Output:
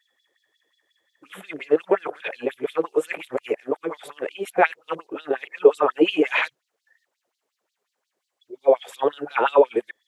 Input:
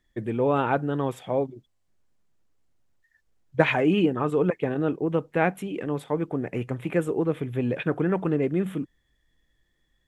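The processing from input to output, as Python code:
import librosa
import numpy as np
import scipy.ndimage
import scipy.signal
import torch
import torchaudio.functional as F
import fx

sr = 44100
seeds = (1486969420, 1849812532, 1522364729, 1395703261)

y = x[::-1].copy()
y = fx.filter_lfo_highpass(y, sr, shape='sine', hz=5.6, low_hz=410.0, high_hz=4500.0, q=3.4)
y = y * 10.0 ** (3.0 / 20.0)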